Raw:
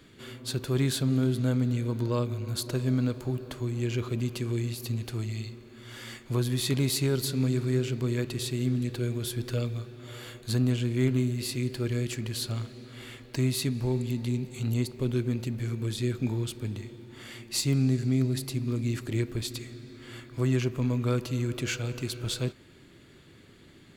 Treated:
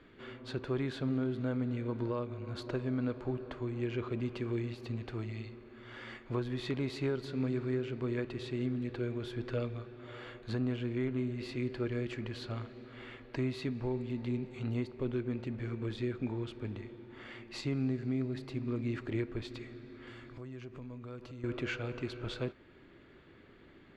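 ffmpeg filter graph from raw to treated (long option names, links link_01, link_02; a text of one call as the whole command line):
ffmpeg -i in.wav -filter_complex "[0:a]asettb=1/sr,asplit=3[link_01][link_02][link_03];[link_01]atrim=end=20.074[link_04];[link_02]atrim=start=20.07:end=21.44,asetpts=PTS-STARTPTS,afade=type=in:duration=0.004:curve=qsin,afade=type=out:start_time=1.366:duration=0.004:curve=qsin,bass=frequency=250:gain=4,treble=frequency=4000:gain=9,acompressor=threshold=-40dB:ratio=4:attack=3.2:release=140:knee=1:detection=peak[link_05];[link_03]atrim=start=21.436[link_06];[link_04][link_05]acrossfade=duration=0.004:curve1=hsin:curve2=qsin[link_07];[link_07][link_06]acrossfade=duration=0.004:curve1=qsin:curve2=hsin,lowpass=2100,equalizer=frequency=130:width=0.8:gain=-8.5,alimiter=level_in=0.5dB:limit=-24dB:level=0:latency=1:release=404,volume=-0.5dB" out.wav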